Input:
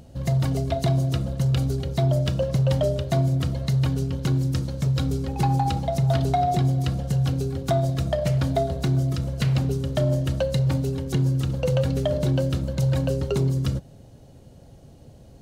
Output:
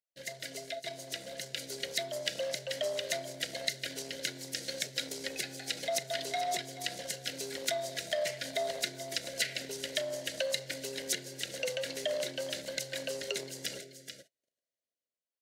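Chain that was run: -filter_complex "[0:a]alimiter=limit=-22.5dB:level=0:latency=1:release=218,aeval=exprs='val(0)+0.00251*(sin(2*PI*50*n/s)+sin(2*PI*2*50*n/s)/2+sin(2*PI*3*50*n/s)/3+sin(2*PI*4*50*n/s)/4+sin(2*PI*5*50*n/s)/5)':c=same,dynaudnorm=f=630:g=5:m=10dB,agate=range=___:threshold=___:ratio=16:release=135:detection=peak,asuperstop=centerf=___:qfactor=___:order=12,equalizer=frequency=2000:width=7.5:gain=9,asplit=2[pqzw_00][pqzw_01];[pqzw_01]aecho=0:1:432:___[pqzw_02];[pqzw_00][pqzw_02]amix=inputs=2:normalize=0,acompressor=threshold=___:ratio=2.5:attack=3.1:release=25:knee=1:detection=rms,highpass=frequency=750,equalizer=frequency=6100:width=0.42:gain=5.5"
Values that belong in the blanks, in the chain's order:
-45dB, -31dB, 1000, 1.3, 0.188, -26dB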